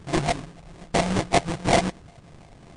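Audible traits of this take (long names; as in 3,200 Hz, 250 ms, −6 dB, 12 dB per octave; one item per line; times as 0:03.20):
a buzz of ramps at a fixed pitch in blocks of 64 samples
phaser sweep stages 12, 2.7 Hz, lowest notch 380–1,200 Hz
aliases and images of a low sample rate 1,400 Hz, jitter 20%
MP3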